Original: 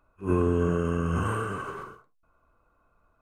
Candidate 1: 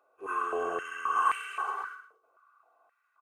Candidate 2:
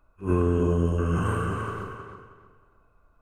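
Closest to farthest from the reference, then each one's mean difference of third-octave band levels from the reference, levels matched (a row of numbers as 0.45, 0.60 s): 2, 1; 3.0, 11.0 dB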